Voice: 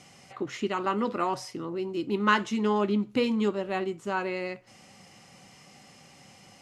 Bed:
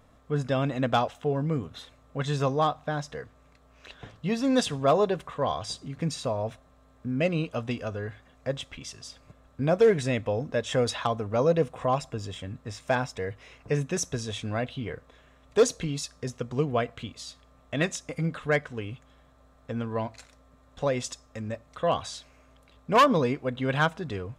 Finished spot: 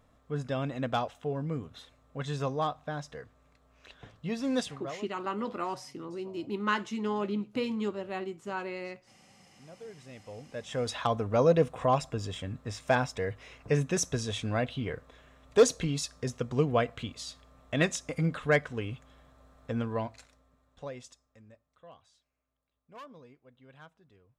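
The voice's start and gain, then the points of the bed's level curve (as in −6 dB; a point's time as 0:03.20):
4.40 s, −6.0 dB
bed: 0:04.58 −6 dB
0:05.14 −27.5 dB
0:09.82 −27.5 dB
0:11.14 0 dB
0:19.79 0 dB
0:22.02 −28.5 dB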